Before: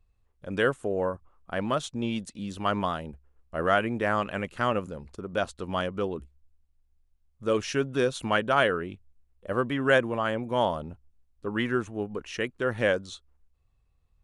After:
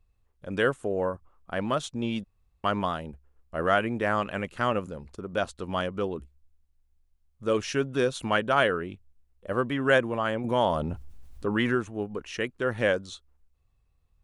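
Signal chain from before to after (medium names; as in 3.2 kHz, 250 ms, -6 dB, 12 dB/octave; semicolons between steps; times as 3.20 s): 2.24–2.64 s: room tone; 10.44–11.75 s: level flattener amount 50%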